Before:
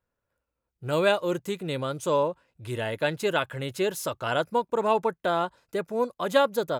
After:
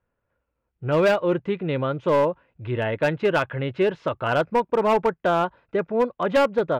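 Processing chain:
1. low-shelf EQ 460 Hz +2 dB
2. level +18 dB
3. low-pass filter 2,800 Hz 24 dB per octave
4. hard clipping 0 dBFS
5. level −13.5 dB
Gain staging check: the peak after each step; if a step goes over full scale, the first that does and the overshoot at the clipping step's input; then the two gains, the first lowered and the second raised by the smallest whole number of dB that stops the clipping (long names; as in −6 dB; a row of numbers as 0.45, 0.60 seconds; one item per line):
−8.5, +9.5, +9.5, 0.0, −13.5 dBFS
step 2, 9.5 dB
step 2 +8 dB, step 5 −3.5 dB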